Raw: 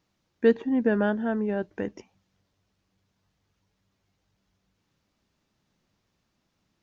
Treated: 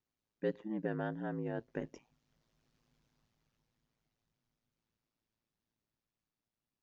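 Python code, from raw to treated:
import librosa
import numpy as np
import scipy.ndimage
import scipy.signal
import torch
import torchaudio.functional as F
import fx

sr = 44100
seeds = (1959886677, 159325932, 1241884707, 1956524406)

y = fx.doppler_pass(x, sr, speed_mps=6, closest_m=3.1, pass_at_s=2.84)
y = y * np.sin(2.0 * np.pi * 56.0 * np.arange(len(y)) / sr)
y = F.gain(torch.from_numpy(y), 1.0).numpy()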